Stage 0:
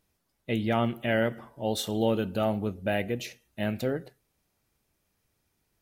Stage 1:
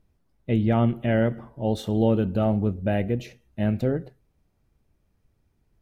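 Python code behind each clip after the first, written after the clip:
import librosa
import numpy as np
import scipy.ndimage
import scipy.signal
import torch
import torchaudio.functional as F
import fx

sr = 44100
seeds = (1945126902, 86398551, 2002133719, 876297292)

y = fx.tilt_eq(x, sr, slope=-3.0)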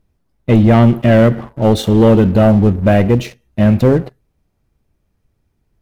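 y = fx.leveller(x, sr, passes=2)
y = F.gain(torch.from_numpy(y), 7.5).numpy()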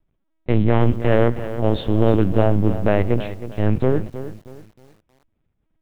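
y = fx.lpc_vocoder(x, sr, seeds[0], excitation='pitch_kept', order=8)
y = fx.echo_crushed(y, sr, ms=317, feedback_pct=35, bits=6, wet_db=-12.5)
y = F.gain(torch.from_numpy(y), -6.5).numpy()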